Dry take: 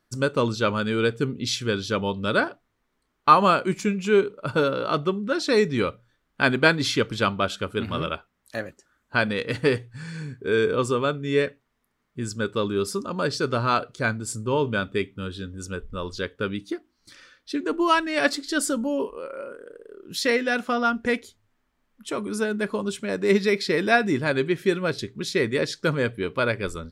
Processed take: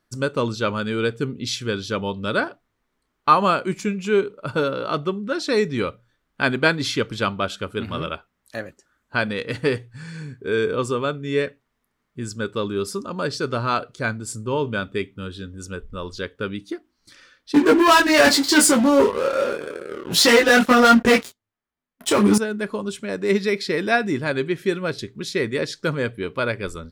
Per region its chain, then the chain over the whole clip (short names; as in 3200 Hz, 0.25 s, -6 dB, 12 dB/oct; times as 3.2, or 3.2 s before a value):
17.54–22.38 sample leveller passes 5 + HPF 61 Hz 6 dB/oct + detuned doubles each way 11 cents
whole clip: dry